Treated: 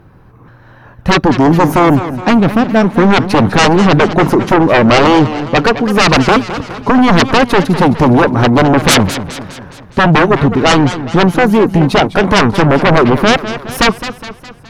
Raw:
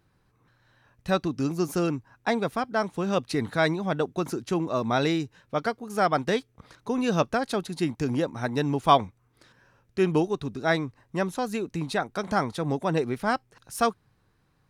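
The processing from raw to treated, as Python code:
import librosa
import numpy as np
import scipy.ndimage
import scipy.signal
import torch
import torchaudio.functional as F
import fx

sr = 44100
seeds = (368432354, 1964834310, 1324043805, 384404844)

y = fx.graphic_eq(x, sr, hz=(2000, 4000, 8000), db=(-4, -8, -11))
y = fx.spec_box(y, sr, start_s=1.98, length_s=0.86, low_hz=330.0, high_hz=1800.0, gain_db=-8)
y = fx.high_shelf(y, sr, hz=5000.0, db=-9.5)
y = fx.fold_sine(y, sr, drive_db=19, ceiling_db=-7.0)
y = fx.echo_warbled(y, sr, ms=207, feedback_pct=52, rate_hz=2.8, cents=186, wet_db=-12)
y = y * librosa.db_to_amplitude(2.5)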